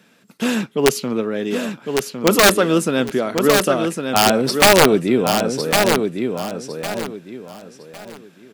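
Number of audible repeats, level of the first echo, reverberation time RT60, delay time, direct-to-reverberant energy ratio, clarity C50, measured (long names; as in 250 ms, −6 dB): 3, −5.5 dB, no reverb audible, 1,106 ms, no reverb audible, no reverb audible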